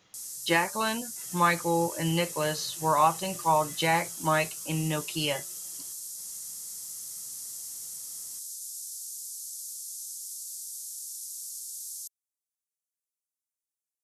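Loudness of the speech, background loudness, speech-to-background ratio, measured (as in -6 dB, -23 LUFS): -28.0 LUFS, -36.5 LUFS, 8.5 dB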